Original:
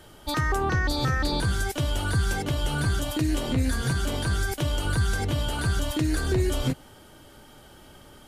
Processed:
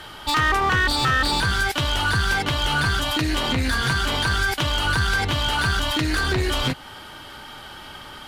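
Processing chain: high-order bell 2 kHz +10.5 dB 2.9 oct; in parallel at -2.5 dB: compression, threshold -31 dBFS, peak gain reduction 15 dB; on the sum: one-sided clip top -19.5 dBFS

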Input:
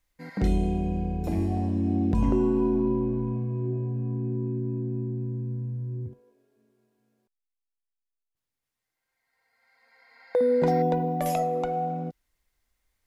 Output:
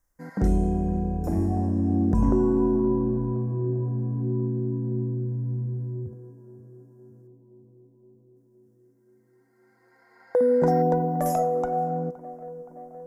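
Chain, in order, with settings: high-order bell 3.1 kHz -15.5 dB 1.3 oct; tape echo 519 ms, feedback 85%, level -16.5 dB, low-pass 1.3 kHz; trim +2 dB

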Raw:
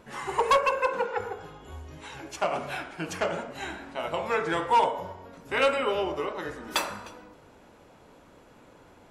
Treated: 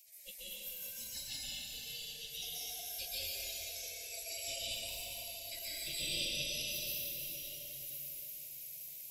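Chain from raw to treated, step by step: spectral levelling over time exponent 0.6; elliptic band-stop 370–3300 Hz, stop band 60 dB; spectral gate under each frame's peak -25 dB weak; treble shelf 5.1 kHz +5.5 dB; on a send: echo that smears into a reverb 1028 ms, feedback 57%, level -11.5 dB; on the sum: compression 10:1, threshold -48 dBFS, peak gain reduction 12 dB; spectral noise reduction 20 dB; plate-style reverb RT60 4 s, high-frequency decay 0.75×, pre-delay 115 ms, DRR -10 dB; trim +9 dB

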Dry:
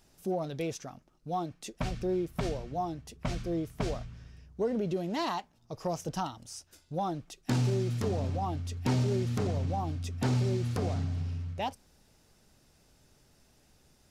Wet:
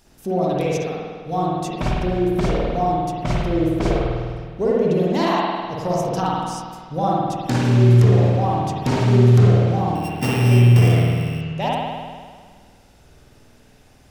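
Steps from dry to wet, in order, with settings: 9.95–11.41 s: sorted samples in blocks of 16 samples; spring tank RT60 1.7 s, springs 50 ms, chirp 60 ms, DRR -5.5 dB; trim +7 dB

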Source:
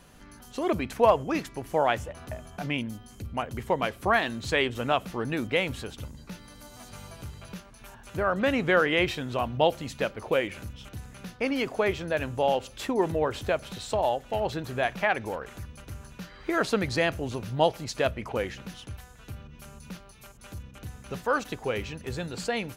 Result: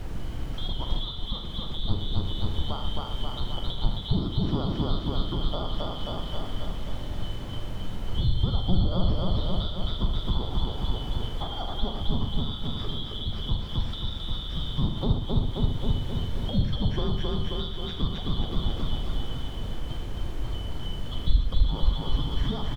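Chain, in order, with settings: four frequency bands reordered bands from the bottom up 2413; Gaussian low-pass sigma 1.7 samples; bass shelf 190 Hz +11 dB; feedback delay 266 ms, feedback 59%, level -3 dB; added noise pink -44 dBFS; compression, threshold -30 dBFS, peak gain reduction 13 dB; tilt EQ -3.5 dB/octave; on a send: loudspeakers at several distances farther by 15 m -10 dB, 26 m -10 dB, 41 m -10 dB

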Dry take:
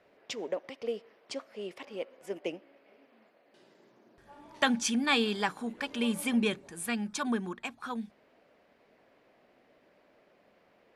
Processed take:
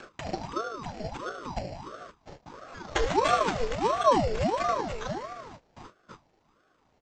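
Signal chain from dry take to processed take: high-pass 110 Hz 24 dB/octave; bass shelf 350 Hz +11.5 dB; upward compressor, threshold -29 dBFS; spring tank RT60 2.6 s, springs 39 ms, chirp 30 ms, DRR 2 dB; gate with hold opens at -31 dBFS; granular stretch 0.64×, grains 75 ms; sample-and-hold 9×; resampled via 16 kHz; ring modulator with a swept carrier 580 Hz, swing 65%, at 1.5 Hz

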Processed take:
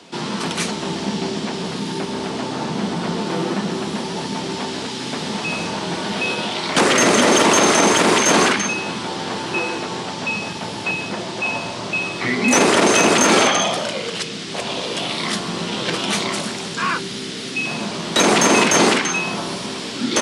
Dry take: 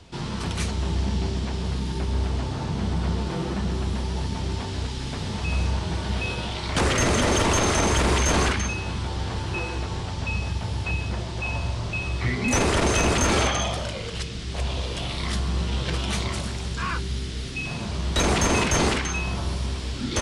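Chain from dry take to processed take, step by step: high-pass 190 Hz 24 dB/octave; trim +8.5 dB

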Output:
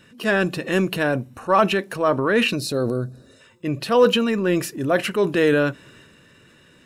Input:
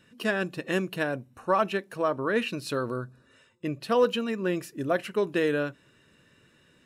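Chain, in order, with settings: transient shaper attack -5 dB, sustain +5 dB; time-frequency box 2.56–3.41 s, 820–3600 Hz -10 dB; trim +8.5 dB

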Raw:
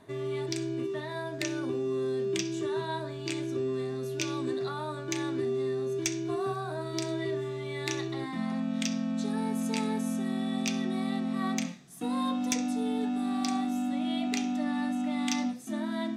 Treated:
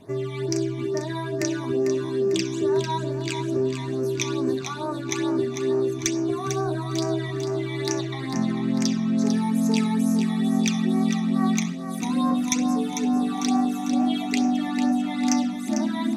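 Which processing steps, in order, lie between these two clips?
phase shifter stages 12, 2.3 Hz, lowest notch 460–3500 Hz; two-band feedback delay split 360 Hz, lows 612 ms, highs 448 ms, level -8 dB; trim +7.5 dB

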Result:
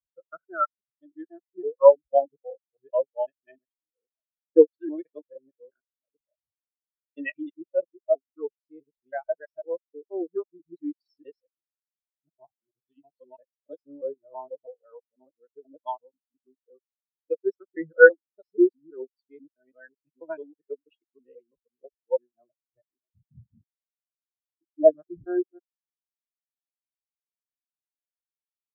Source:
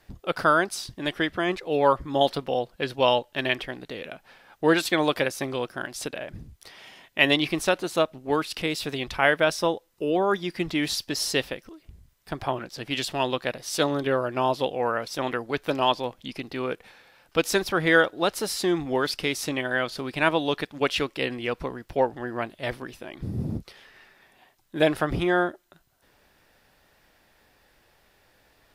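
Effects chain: time reversed locally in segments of 163 ms; spectral contrast expander 4:1; trim +1 dB

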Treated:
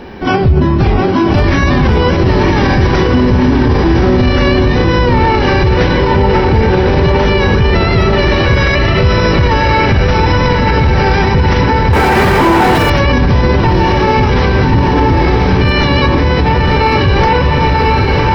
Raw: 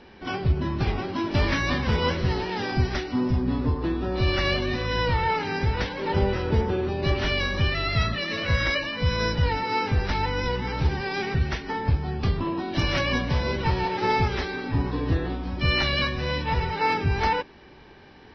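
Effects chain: treble shelf 3.8 kHz +9 dB; echo that smears into a reverb 1087 ms, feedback 57%, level -3 dB; 11.93–12.90 s: overdrive pedal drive 32 dB, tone 2 kHz, clips at -11 dBFS; peaking EQ 4.9 kHz -12.5 dB 2.6 oct; loudness maximiser +21.5 dB; trim -1 dB

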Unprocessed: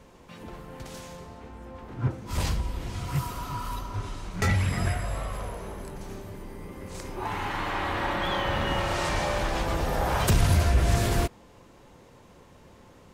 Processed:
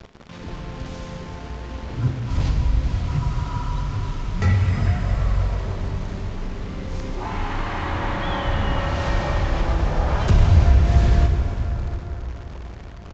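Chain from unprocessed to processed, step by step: bass shelf 160 Hz +10.5 dB; in parallel at 0 dB: compression, threshold -28 dBFS, peak gain reduction 18.5 dB; on the sum: word length cut 6-bit, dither none; distance through air 85 m; on a send at -3 dB: reverberation RT60 5.3 s, pre-delay 13 ms; on the sum: resampled via 16 kHz; trim -3.5 dB

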